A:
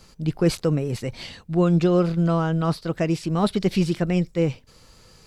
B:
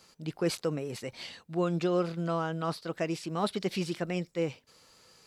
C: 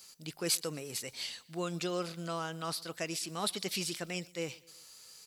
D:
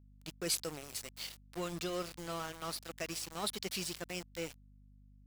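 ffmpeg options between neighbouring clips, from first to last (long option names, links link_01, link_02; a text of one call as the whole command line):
ffmpeg -i in.wav -af "highpass=frequency=410:poles=1,volume=-5dB" out.wav
ffmpeg -i in.wav -af "crystalizer=i=7:c=0,aecho=1:1:122|244|366:0.0631|0.0341|0.0184,volume=-8.5dB" out.wav
ffmpeg -i in.wav -af "aeval=exprs='val(0)*gte(abs(val(0)),0.0119)':channel_layout=same,aeval=exprs='val(0)+0.00158*(sin(2*PI*50*n/s)+sin(2*PI*2*50*n/s)/2+sin(2*PI*3*50*n/s)/3+sin(2*PI*4*50*n/s)/4+sin(2*PI*5*50*n/s)/5)':channel_layout=same,volume=-3dB" out.wav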